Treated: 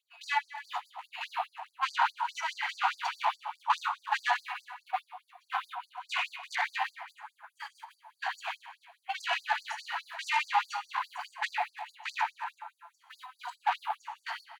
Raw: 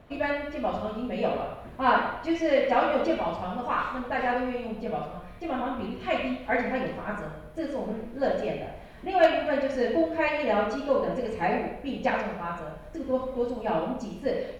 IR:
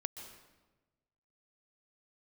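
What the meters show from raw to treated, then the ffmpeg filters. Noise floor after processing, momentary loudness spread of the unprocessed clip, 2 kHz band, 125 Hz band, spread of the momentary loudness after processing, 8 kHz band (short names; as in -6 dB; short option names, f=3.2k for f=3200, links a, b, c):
-75 dBFS, 11 LU, -1.0 dB, under -40 dB, 16 LU, n/a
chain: -filter_complex "[0:a]agate=range=-18dB:threshold=-29dB:ratio=16:detection=peak,alimiter=limit=-18dB:level=0:latency=1:release=109,asplit=2[a][b];[b]adelay=340,highpass=300,lowpass=3.4k,asoftclip=type=hard:threshold=-26.5dB,volume=-18dB[c];[a][c]amix=inputs=2:normalize=0,aeval=exprs='0.133*(cos(1*acos(clip(val(0)/0.133,-1,1)))-cos(1*PI/2))+0.015*(cos(5*acos(clip(val(0)/0.133,-1,1)))-cos(5*PI/2))':c=same,asoftclip=type=tanh:threshold=-21.5dB,bandreject=f=5.3k:w=7.2,asplit=2[d][e];[e]equalizer=f=910:w=4:g=14.5[f];[1:a]atrim=start_sample=2205[g];[f][g]afir=irnorm=-1:irlink=0,volume=-2dB[h];[d][h]amix=inputs=2:normalize=0,afftfilt=real='re*gte(b*sr/1024,670*pow(4500/670,0.5+0.5*sin(2*PI*4.8*pts/sr)))':imag='im*gte(b*sr/1024,670*pow(4500/670,0.5+0.5*sin(2*PI*4.8*pts/sr)))':win_size=1024:overlap=0.75"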